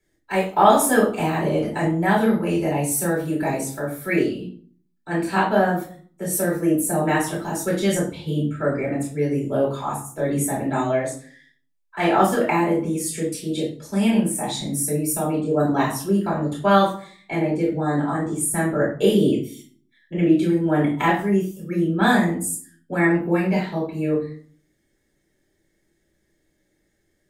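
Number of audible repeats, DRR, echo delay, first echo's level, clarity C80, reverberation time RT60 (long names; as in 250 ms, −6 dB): no echo audible, −6.5 dB, no echo audible, no echo audible, 11.5 dB, 0.50 s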